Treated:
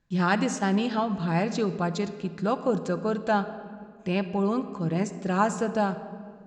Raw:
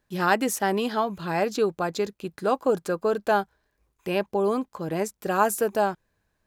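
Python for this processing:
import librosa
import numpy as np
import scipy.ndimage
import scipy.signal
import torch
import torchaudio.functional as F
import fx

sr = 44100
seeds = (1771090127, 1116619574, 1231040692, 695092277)

y = scipy.signal.sosfilt(scipy.signal.ellip(4, 1.0, 60, 7400.0, 'lowpass', fs=sr, output='sos'), x)
y = fx.low_shelf_res(y, sr, hz=280.0, db=6.0, q=1.5)
y = fx.room_shoebox(y, sr, seeds[0], volume_m3=3600.0, walls='mixed', distance_m=0.77)
y = F.gain(torch.from_numpy(y), -2.0).numpy()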